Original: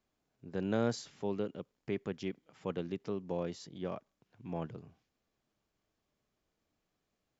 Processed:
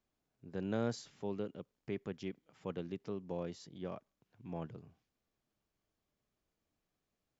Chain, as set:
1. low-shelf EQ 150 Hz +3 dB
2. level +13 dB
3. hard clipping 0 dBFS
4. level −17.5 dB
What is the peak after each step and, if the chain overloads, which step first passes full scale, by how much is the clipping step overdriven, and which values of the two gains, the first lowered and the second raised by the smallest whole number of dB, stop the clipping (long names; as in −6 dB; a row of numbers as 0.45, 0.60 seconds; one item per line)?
−18.5, −5.5, −5.5, −23.0 dBFS
no step passes full scale